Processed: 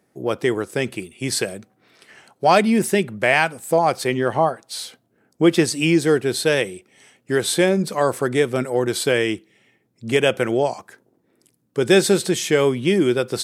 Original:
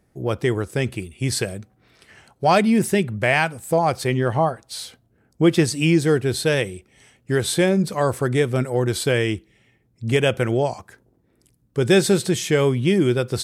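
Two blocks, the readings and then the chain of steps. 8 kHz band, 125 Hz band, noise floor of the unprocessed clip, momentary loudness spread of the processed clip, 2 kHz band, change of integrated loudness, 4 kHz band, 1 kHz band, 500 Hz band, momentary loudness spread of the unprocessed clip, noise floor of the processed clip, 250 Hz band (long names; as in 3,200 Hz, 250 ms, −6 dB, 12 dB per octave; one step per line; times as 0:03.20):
+2.0 dB, −5.5 dB, −64 dBFS, 12 LU, +2.0 dB, +1.0 dB, +2.0 dB, +2.0 dB, +2.0 dB, 10 LU, −66 dBFS, 0.0 dB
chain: high-pass filter 210 Hz 12 dB per octave
level +2 dB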